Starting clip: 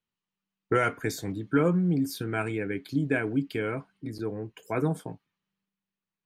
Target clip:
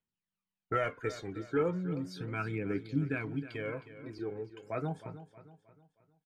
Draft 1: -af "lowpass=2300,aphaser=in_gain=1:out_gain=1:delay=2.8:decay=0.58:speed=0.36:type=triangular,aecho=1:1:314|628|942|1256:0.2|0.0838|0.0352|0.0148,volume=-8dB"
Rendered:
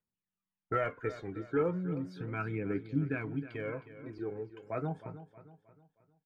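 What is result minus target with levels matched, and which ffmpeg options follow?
4,000 Hz band −7.5 dB
-af "lowpass=4800,aphaser=in_gain=1:out_gain=1:delay=2.8:decay=0.58:speed=0.36:type=triangular,aecho=1:1:314|628|942|1256:0.2|0.0838|0.0352|0.0148,volume=-8dB"

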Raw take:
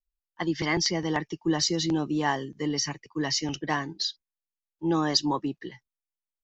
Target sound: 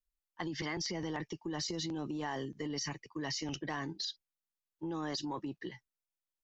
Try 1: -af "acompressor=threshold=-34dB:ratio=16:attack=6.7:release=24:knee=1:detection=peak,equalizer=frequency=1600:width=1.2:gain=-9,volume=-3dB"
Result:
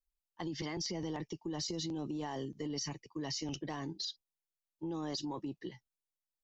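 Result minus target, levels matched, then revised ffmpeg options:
2,000 Hz band −6.5 dB
-af "acompressor=threshold=-34dB:ratio=16:attack=6.7:release=24:knee=1:detection=peak,volume=-3dB"

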